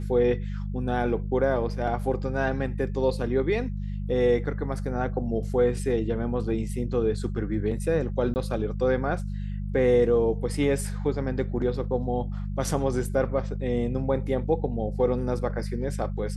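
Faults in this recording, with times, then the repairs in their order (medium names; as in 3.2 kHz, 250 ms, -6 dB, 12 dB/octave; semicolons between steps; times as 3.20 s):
hum 50 Hz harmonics 4 -31 dBFS
8.34–8.36 s: dropout 19 ms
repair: de-hum 50 Hz, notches 4; interpolate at 8.34 s, 19 ms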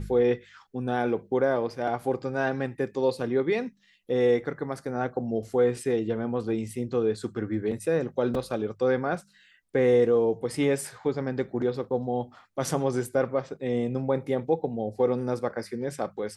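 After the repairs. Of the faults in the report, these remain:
nothing left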